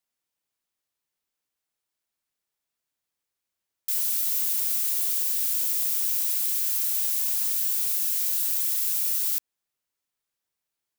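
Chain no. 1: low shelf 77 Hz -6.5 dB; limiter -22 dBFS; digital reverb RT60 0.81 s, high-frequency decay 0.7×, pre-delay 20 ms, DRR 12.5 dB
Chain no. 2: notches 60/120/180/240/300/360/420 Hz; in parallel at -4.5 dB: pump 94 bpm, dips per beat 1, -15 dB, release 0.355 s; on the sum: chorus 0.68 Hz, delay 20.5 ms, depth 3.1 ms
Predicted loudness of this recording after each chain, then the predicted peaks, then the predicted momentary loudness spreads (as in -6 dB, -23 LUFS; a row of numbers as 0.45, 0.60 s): -28.5, -22.5 LUFS; -20.5, -11.5 dBFS; 1, 2 LU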